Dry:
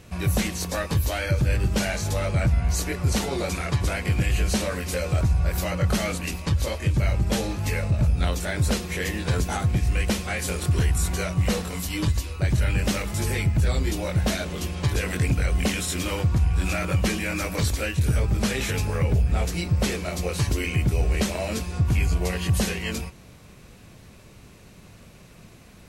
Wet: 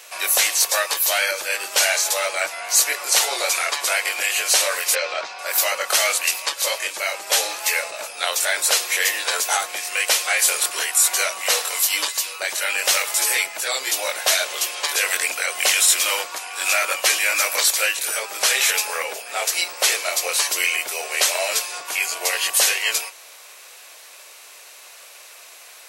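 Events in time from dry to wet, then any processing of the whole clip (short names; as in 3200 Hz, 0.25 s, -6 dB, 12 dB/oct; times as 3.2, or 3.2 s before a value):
4.95–5.39 LPF 4900 Hz 24 dB/oct
whole clip: HPF 550 Hz 24 dB/oct; tilt +2.5 dB/oct; gain +7.5 dB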